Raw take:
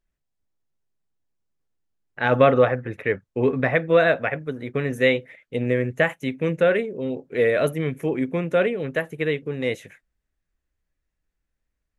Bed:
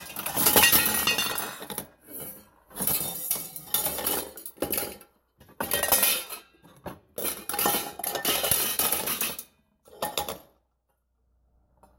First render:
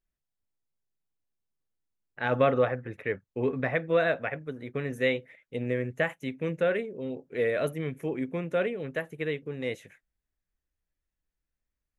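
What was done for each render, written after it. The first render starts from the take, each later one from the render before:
level −7.5 dB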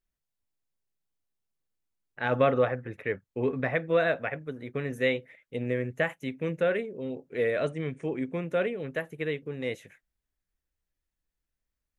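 0:07.56–0:08.33: linear-phase brick-wall low-pass 9,700 Hz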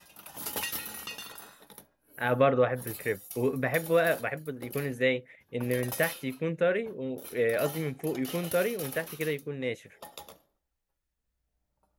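mix in bed −15.5 dB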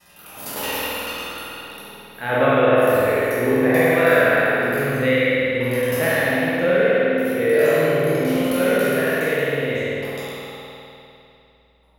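peak hold with a decay on every bin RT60 1.69 s
spring reverb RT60 2.8 s, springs 50 ms, chirp 20 ms, DRR −6.5 dB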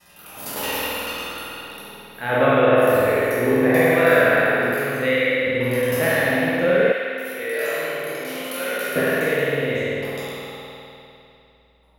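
0:04.74–0:05.47: low-shelf EQ 220 Hz −10.5 dB
0:06.92–0:08.96: high-pass filter 1,400 Hz 6 dB per octave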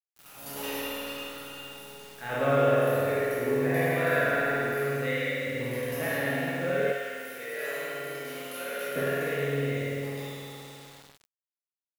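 tuned comb filter 140 Hz, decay 0.45 s, harmonics all, mix 80%
bit reduction 8 bits

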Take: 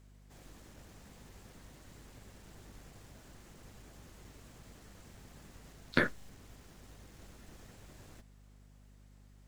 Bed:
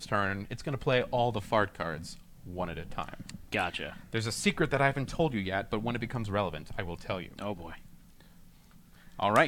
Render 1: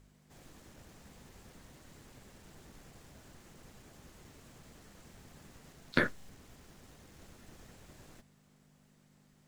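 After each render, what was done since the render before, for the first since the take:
hum removal 50 Hz, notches 2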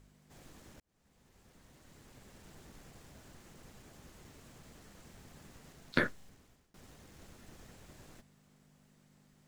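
0:00.80–0:02.44: fade in
0:05.57–0:06.74: fade out equal-power, to −24 dB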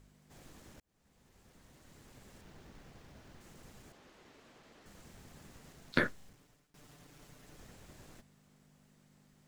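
0:02.41–0:03.41: running median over 5 samples
0:03.92–0:04.86: three-way crossover with the lows and the highs turned down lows −14 dB, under 240 Hz, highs −13 dB, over 5,100 Hz
0:06.33–0:07.57: lower of the sound and its delayed copy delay 6.8 ms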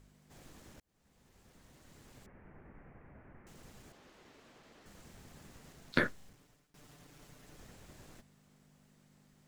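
0:02.26–0:03.47: Butterworth low-pass 2,300 Hz 48 dB per octave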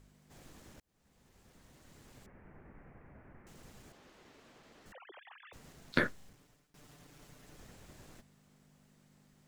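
0:04.92–0:05.53: three sine waves on the formant tracks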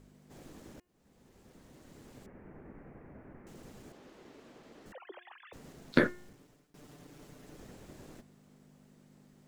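parametric band 330 Hz +8.5 dB 2.2 octaves
hum removal 357.2 Hz, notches 8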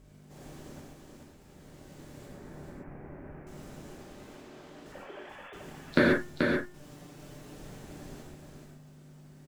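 on a send: single-tap delay 433 ms −4.5 dB
on the sum: reverb whose tail is shaped and stops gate 160 ms flat, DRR −3 dB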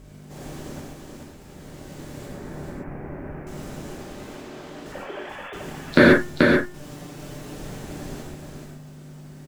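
level +10.5 dB
brickwall limiter −1 dBFS, peak gain reduction 3 dB

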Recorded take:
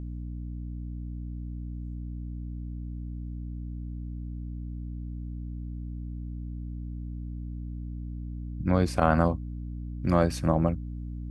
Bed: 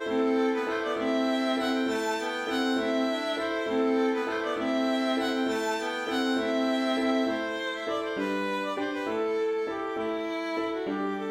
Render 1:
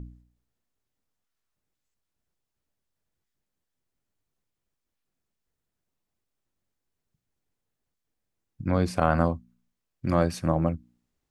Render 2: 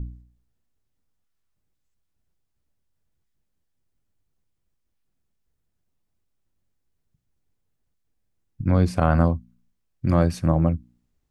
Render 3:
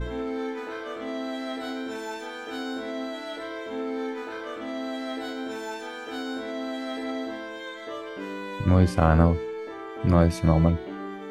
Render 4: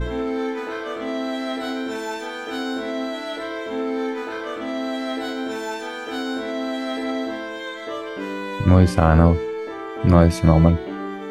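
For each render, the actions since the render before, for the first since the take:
hum removal 60 Hz, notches 5
low-shelf EQ 180 Hz +10.5 dB
mix in bed −5.5 dB
level +6 dB; brickwall limiter −2 dBFS, peak gain reduction 3 dB

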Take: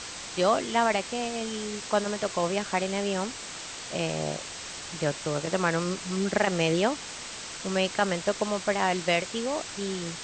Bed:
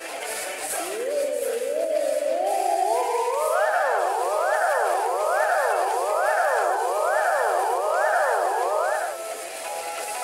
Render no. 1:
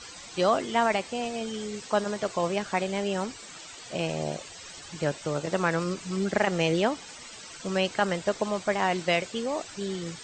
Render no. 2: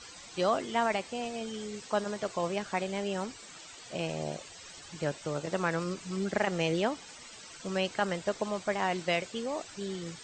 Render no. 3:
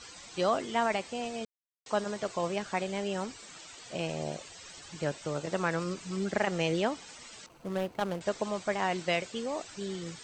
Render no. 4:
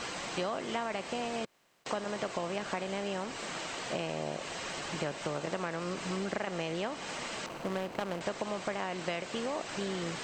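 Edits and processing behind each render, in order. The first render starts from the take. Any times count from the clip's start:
broadband denoise 13 dB, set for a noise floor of −40 dBFS
level −4.5 dB
0:01.45–0:01.86: silence; 0:07.46–0:08.21: running median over 25 samples
compressor on every frequency bin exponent 0.6; downward compressor, threshold −31 dBFS, peak gain reduction 10.5 dB

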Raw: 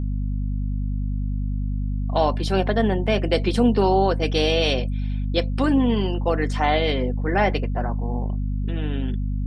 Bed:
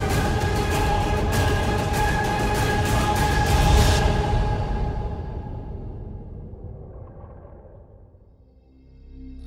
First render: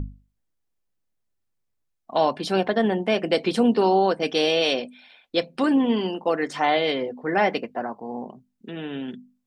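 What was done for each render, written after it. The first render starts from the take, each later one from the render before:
mains-hum notches 50/100/150/200/250 Hz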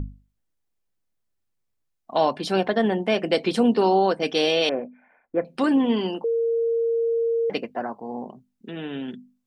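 0:04.69–0:05.45: Butterworth low-pass 1,900 Hz 48 dB per octave
0:06.24–0:07.50: beep over 461 Hz −19.5 dBFS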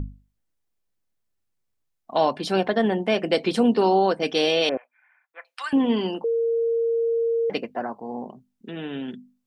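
0:04.77–0:05.73: high-pass filter 1,100 Hz 24 dB per octave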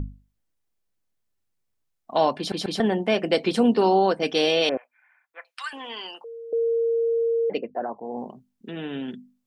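0:02.38: stutter in place 0.14 s, 3 plays
0:05.51–0:06.53: high-pass filter 1,100 Hz
0:07.21–0:08.17: spectral envelope exaggerated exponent 1.5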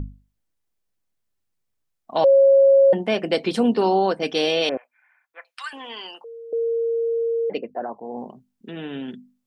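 0:02.24–0:02.93: beep over 547 Hz −10 dBFS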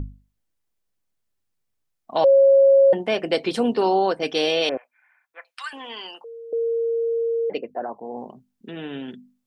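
dynamic equaliser 200 Hz, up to −6 dB, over −41 dBFS, Q 2.3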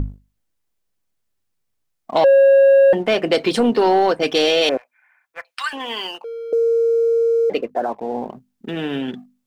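leveller curve on the samples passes 1
in parallel at −2 dB: downward compressor, threshold −24 dBFS, peak gain reduction 11.5 dB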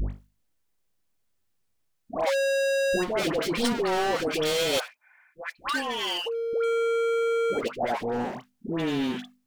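hard clipping −24 dBFS, distortion −5 dB
all-pass dispersion highs, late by 111 ms, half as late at 920 Hz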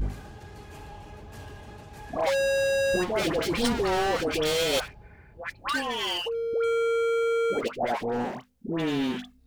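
mix in bed −22 dB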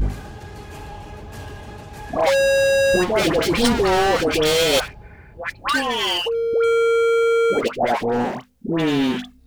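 level +8 dB

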